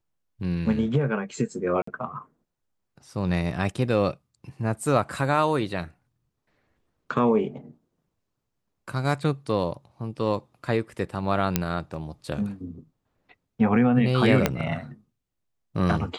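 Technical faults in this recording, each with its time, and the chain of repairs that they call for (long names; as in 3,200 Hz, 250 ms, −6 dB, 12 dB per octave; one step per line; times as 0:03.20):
0:01.82–0:01.87: drop-out 54 ms
0:11.56: click −5 dBFS
0:14.46: click −5 dBFS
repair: click removal
repair the gap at 0:01.82, 54 ms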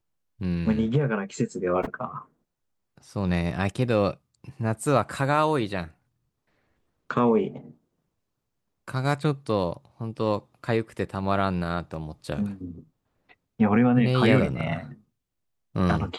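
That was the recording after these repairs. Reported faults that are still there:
0:11.56: click
0:14.46: click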